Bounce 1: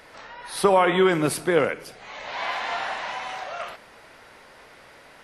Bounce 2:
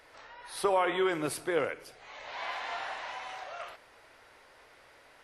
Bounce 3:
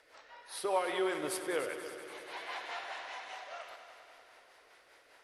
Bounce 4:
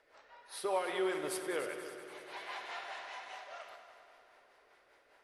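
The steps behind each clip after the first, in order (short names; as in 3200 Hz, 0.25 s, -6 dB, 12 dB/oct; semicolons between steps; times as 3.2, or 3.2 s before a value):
bell 190 Hz -11.5 dB 0.6 oct; gain -8.5 dB
rotary speaker horn 5 Hz; tone controls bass -11 dB, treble +2 dB; multi-head echo 96 ms, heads all three, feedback 65%, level -15 dB; gain -2 dB
reverb RT60 1.3 s, pre-delay 5 ms, DRR 10.5 dB; mismatched tape noise reduction decoder only; gain -2.5 dB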